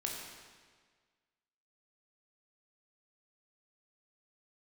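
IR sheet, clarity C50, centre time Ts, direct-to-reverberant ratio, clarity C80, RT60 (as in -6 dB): 1.5 dB, 76 ms, -1.5 dB, 3.0 dB, 1.6 s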